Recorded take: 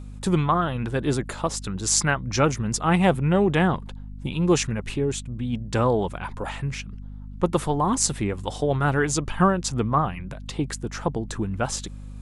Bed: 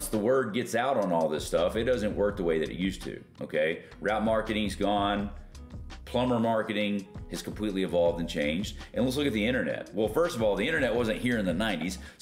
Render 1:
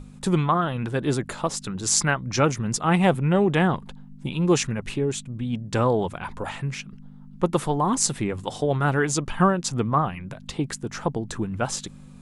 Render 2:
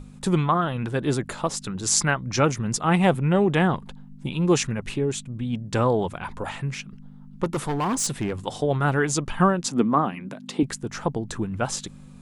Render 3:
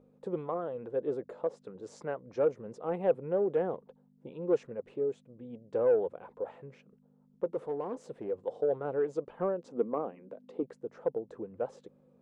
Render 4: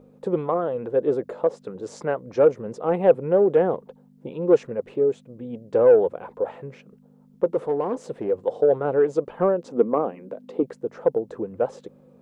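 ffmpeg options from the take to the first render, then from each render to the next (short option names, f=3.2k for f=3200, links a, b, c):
-af "bandreject=f=50:t=h:w=6,bandreject=f=100:t=h:w=6"
-filter_complex "[0:a]asplit=3[a][b][c];[a]afade=t=out:st=7.43:d=0.02[d];[b]volume=21dB,asoftclip=hard,volume=-21dB,afade=t=in:st=7.43:d=0.02,afade=t=out:st=8.34:d=0.02[e];[c]afade=t=in:st=8.34:d=0.02[f];[d][e][f]amix=inputs=3:normalize=0,asettb=1/sr,asplit=3[g][h][i];[g]atrim=end=9.664[j];[h]atrim=start=9.66:end=10.63,asetpts=PTS-STARTPTS,afade=t=in:d=0.004:c=qsin,afade=t=out:st=0.966:d=0.004:c=qsin,highpass=f=240:t=q:w=2.4[k];[i]atrim=start=10.626[l];[j][k]acrossfade=d=0.004:c1=hsin:c2=qsin[m];[m][l]acrossfade=d=0.004:c1=qsin:c2=hsin"
-af "bandpass=f=490:t=q:w=5.5:csg=0,aeval=exprs='0.178*(cos(1*acos(clip(val(0)/0.178,-1,1)))-cos(1*PI/2))+0.00708*(cos(5*acos(clip(val(0)/0.178,-1,1)))-cos(5*PI/2))':c=same"
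-af "volume=11dB"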